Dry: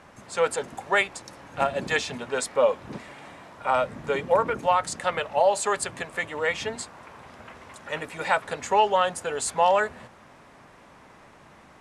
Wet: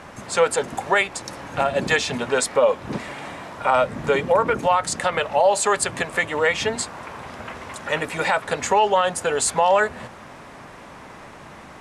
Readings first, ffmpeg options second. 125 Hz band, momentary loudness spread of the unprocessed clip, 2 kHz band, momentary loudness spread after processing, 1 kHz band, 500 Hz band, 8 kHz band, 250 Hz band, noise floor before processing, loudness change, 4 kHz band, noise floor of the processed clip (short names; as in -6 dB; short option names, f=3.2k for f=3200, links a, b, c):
+7.5 dB, 18 LU, +5.0 dB, 17 LU, +3.5 dB, +4.5 dB, +7.0 dB, +7.0 dB, -52 dBFS, +4.5 dB, +5.5 dB, -42 dBFS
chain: -filter_complex "[0:a]asplit=2[a][b];[b]acompressor=threshold=-32dB:ratio=6,volume=0dB[c];[a][c]amix=inputs=2:normalize=0,alimiter=level_in=11dB:limit=-1dB:release=50:level=0:latency=1,volume=-7dB"